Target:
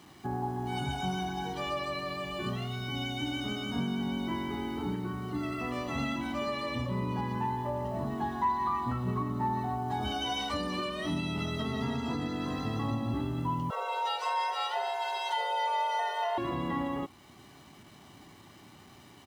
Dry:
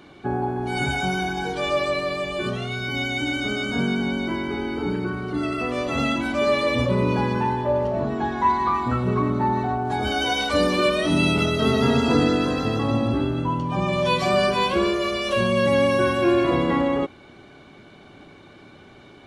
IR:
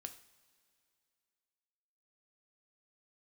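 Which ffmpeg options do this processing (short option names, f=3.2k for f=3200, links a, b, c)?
-filter_complex "[0:a]acrusher=bits=7:mix=0:aa=0.000001,asettb=1/sr,asplit=3[a][b][c];[a]atrim=end=13.704[d];[b]atrim=start=13.7:end=16.38,asetpts=PTS-STARTPTS,afade=t=in:d=0.004:c=qsin,afade=t=out:st=2.676:d=0.004:c=qsin,afreqshift=340[e];[c]atrim=start=16.376[f];[d][e]acrossfade=d=0.004:c1=hsin:c2=qsin[g];[g][f]acrossfade=d=0.004:c1=qsin:c2=hsin,highpass=57,highshelf=f=6.6k:g=-5,bandreject=f=2.2k:w=17,alimiter=limit=-16dB:level=0:latency=1:release=457,aecho=1:1:1:0.5,volume=-7.5dB"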